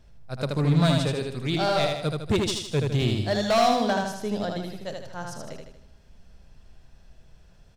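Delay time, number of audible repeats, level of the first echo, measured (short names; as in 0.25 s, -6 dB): 78 ms, 5, -3.5 dB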